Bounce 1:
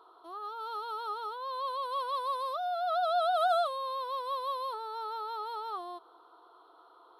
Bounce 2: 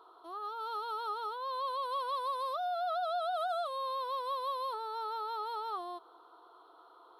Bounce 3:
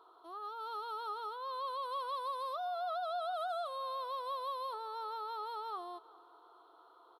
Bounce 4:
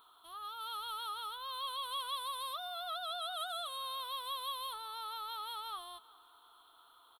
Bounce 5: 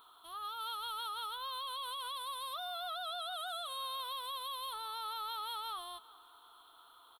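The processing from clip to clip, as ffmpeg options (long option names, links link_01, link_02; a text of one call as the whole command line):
ffmpeg -i in.wav -af "acompressor=threshold=-31dB:ratio=10" out.wav
ffmpeg -i in.wav -filter_complex "[0:a]asplit=2[link_01][link_02];[link_02]adelay=386,lowpass=frequency=4400:poles=1,volume=-21.5dB,asplit=2[link_03][link_04];[link_04]adelay=386,lowpass=frequency=4400:poles=1,volume=0.5,asplit=2[link_05][link_06];[link_06]adelay=386,lowpass=frequency=4400:poles=1,volume=0.5,asplit=2[link_07][link_08];[link_08]adelay=386,lowpass=frequency=4400:poles=1,volume=0.5[link_09];[link_01][link_03][link_05][link_07][link_09]amix=inputs=5:normalize=0,volume=-3.5dB" out.wav
ffmpeg -i in.wav -af "firequalizer=gain_entry='entry(230,0);entry(330,-25);entry(850,-15);entry(1500,-8);entry(3300,4);entry(4900,-12);entry(9200,6)':delay=0.05:min_phase=1,volume=10dB" out.wav
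ffmpeg -i in.wav -af "alimiter=level_in=12dB:limit=-24dB:level=0:latency=1,volume=-12dB,volume=2.5dB" out.wav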